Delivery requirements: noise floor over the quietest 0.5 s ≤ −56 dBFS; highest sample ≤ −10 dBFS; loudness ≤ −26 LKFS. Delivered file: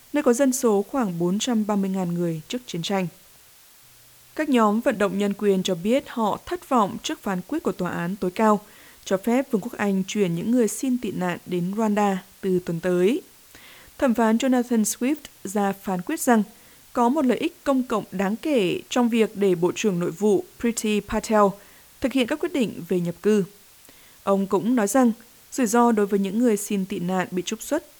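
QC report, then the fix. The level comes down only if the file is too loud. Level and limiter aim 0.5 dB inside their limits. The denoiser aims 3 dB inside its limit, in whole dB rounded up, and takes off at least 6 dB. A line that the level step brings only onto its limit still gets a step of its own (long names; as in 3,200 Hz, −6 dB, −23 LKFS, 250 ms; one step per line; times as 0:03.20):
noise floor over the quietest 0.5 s −52 dBFS: out of spec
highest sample −4.0 dBFS: out of spec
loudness −23.5 LKFS: out of spec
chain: broadband denoise 6 dB, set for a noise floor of −52 dBFS
level −3 dB
brickwall limiter −10.5 dBFS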